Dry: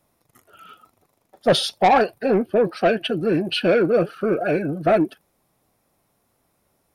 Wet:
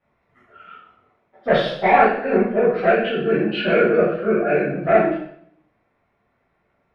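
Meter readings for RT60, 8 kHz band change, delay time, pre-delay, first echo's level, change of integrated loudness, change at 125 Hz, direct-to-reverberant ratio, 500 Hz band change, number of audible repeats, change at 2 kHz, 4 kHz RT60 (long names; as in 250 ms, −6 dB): 0.70 s, can't be measured, no echo audible, 9 ms, no echo audible, +1.5 dB, 0.0 dB, −9.5 dB, +2.0 dB, no echo audible, +5.0 dB, 0.65 s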